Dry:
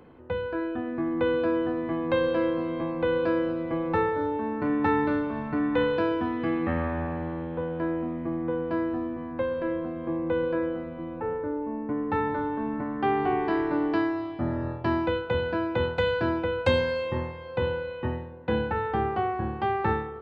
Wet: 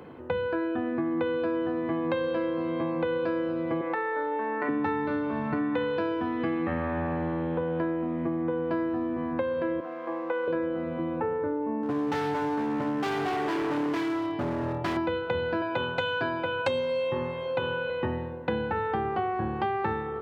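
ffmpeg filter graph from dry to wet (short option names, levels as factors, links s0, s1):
-filter_complex "[0:a]asettb=1/sr,asplit=3[s0][s1][s2];[s0]atrim=end=3.814[s3];[s1]atrim=start=3.81:end=4.69,asetpts=PTS-STARTPTS,afade=t=in:d=0.004:c=qsin,afade=t=out:st=0.876:d=0.004:c=qsin,highpass=440,lowpass=3300,equalizer=f=1900:t=o:w=0.29:g=8.5,acompressor=threshold=0.0398:ratio=6:attack=3.2:release=140:knee=1:detection=peak[s4];[s2]atrim=start=4.686[s5];[s3][s4]acrossfade=d=0.004:c1=hsin:c2=qsin[s6];[s6][s5]acrossfade=d=0.004:c1=qsin:c2=hsin,asettb=1/sr,asplit=3[s7][s8][s9];[s7]atrim=end=9.804[s10];[s8]atrim=start=9.8:end=10.48,asetpts=PTS-STARTPTS,afade=t=in:d=0.004:c=qsin,afade=t=out:st=0.676:d=0.004:c=qsin,aeval=exprs='sgn(val(0))*max(abs(val(0))-0.00224,0)':c=same,highpass=650,lowpass=2300[s11];[s9]atrim=start=10.476[s12];[s10][s11]acrossfade=d=0.004:c1=hsin:c2=qsin[s13];[s13][s12]acrossfade=d=0.004:c1=qsin:c2=hsin,asettb=1/sr,asplit=3[s14][s15][s16];[s14]atrim=end=11.824[s17];[s15]atrim=start=11.82:end=14.97,asetpts=PTS-STARTPTS,afade=t=in:d=0.004:c=qsin,afade=t=out:st=3.146:d=0.004:c=qsin,asoftclip=type=hard:threshold=0.0335,aecho=1:1:7:0.34,atrim=end_sample=138915[s18];[s16]atrim=start=14.966[s19];[s17][s18]acrossfade=d=0.004:c1=hsin:c2=qsin[s20];[s20][s19]acrossfade=d=0.004:c1=qsin:c2=hsin,asettb=1/sr,asplit=3[s21][s22][s23];[s21]atrim=end=15.614[s24];[s22]atrim=start=15.61:end=17.9,asetpts=PTS-STARTPTS,afade=t=in:d=0.004:c=qsin,afade=t=out:st=2.286:d=0.004:c=qsin,bass=f=250:g=-5,treble=f=4000:g=0,aecho=1:1:7.3:0.78,atrim=end_sample=100989[s25];[s23]atrim=start=17.896[s26];[s24][s25]acrossfade=d=0.004:c1=hsin:c2=qsin[s27];[s27][s26]acrossfade=d=0.004:c1=qsin:c2=hsin,highpass=93,bandreject=f=60:t=h:w=6,bandreject=f=120:t=h:w=6,bandreject=f=180:t=h:w=6,bandreject=f=240:t=h:w=6,bandreject=f=300:t=h:w=6,acompressor=threshold=0.0224:ratio=6,volume=2.24"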